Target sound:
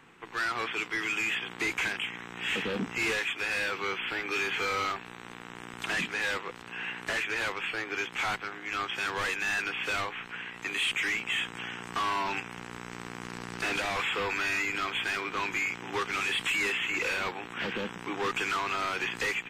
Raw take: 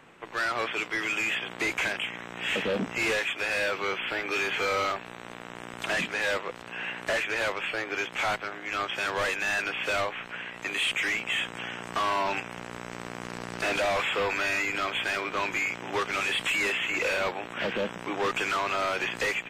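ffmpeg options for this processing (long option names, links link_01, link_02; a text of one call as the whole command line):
ffmpeg -i in.wav -af "equalizer=frequency=600:width_type=o:width=0.36:gain=-13,volume=-1.5dB" out.wav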